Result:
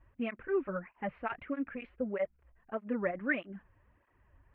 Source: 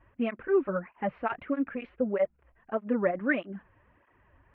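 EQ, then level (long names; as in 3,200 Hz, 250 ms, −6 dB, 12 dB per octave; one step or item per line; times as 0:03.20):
dynamic equaliser 2,200 Hz, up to +6 dB, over −48 dBFS, Q 1.1
low-shelf EQ 90 Hz +11 dB
−7.5 dB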